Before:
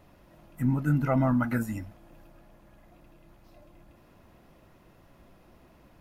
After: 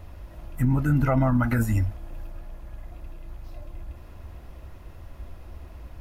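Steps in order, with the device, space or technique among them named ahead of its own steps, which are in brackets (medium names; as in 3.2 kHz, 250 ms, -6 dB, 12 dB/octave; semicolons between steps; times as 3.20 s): car stereo with a boomy subwoofer (resonant low shelf 110 Hz +12.5 dB, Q 1.5; peak limiter -21 dBFS, peak gain reduction 7.5 dB); trim +7 dB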